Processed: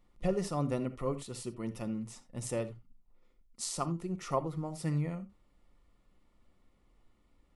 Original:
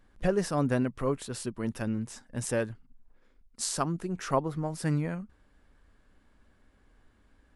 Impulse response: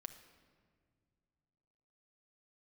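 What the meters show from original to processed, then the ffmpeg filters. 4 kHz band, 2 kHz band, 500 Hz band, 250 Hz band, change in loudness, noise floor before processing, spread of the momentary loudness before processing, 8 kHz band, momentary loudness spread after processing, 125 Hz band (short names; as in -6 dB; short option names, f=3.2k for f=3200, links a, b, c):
-5.0 dB, -11.0 dB, -5.0 dB, -5.0 dB, -5.0 dB, -64 dBFS, 9 LU, -5.0 dB, 9 LU, -3.5 dB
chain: -filter_complex "[0:a]asuperstop=centerf=1600:order=4:qfactor=4.3[a];[1:a]atrim=start_sample=2205,afade=t=out:st=0.14:d=0.01,atrim=end_sample=6615[b];[a][b]afir=irnorm=-1:irlink=0"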